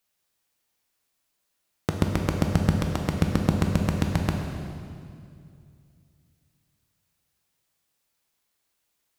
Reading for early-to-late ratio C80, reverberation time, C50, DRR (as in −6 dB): 4.5 dB, 2.4 s, 3.5 dB, 2.0 dB